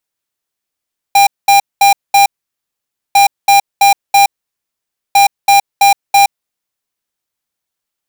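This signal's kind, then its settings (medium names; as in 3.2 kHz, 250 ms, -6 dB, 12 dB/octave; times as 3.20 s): beep pattern square 800 Hz, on 0.12 s, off 0.21 s, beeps 4, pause 0.89 s, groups 3, -6.5 dBFS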